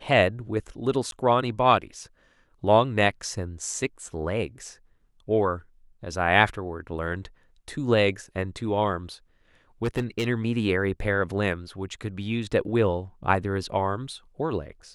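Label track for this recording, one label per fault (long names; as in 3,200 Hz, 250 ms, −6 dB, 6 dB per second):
1.110000	1.120000	drop-out 12 ms
9.840000	10.270000	clipping −21 dBFS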